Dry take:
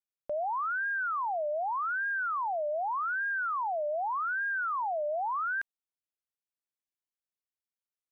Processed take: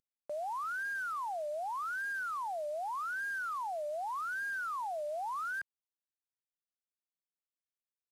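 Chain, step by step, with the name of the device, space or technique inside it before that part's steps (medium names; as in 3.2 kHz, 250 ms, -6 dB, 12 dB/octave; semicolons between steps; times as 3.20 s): early wireless headset (high-pass 170 Hz 6 dB/octave; CVSD coder 64 kbps); trim -5.5 dB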